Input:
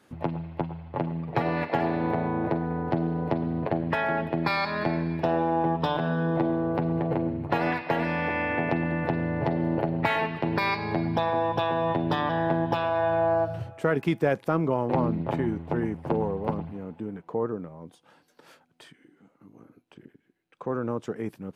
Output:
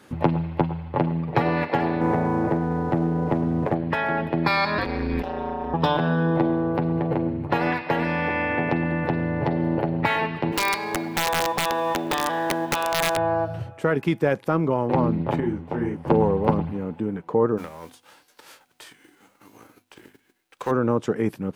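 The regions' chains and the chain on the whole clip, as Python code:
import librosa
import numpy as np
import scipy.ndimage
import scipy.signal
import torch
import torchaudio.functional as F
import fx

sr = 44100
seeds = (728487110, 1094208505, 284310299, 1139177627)

y = fx.chain(x, sr, fx.lowpass(hz=2200.0, slope=12),
    fx.leveller(passes=1), at=(2.01, 3.75))
y = fx.chain(y, sr, fx.high_shelf(hz=3300.0, db=7.5),
    fx.ring_mod(carrier_hz=97.0),
    fx.over_compress(threshold_db=-33.0, ratio=-1.0), at=(4.78, 5.74))
y = fx.chain(y, sr, fx.law_mismatch(coded='mu'),
    fx.highpass(hz=320.0, slope=12),
    fx.overflow_wrap(gain_db=17.0), at=(10.52, 13.17))
y = fx.chain(y, sr, fx.notch(hz=3800.0, q=23.0),
    fx.detune_double(cents=57), at=(15.4, 16.08))
y = fx.envelope_flatten(y, sr, power=0.6, at=(17.57, 20.7), fade=0.02)
y = fx.peak_eq(y, sr, hz=170.0, db=-11.5, octaves=1.4, at=(17.57, 20.7), fade=0.02)
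y = fx.hum_notches(y, sr, base_hz=50, count=5, at=(17.57, 20.7), fade=0.02)
y = fx.notch(y, sr, hz=680.0, q=14.0)
y = fx.rider(y, sr, range_db=10, speed_s=2.0)
y = y * librosa.db_to_amplitude(3.5)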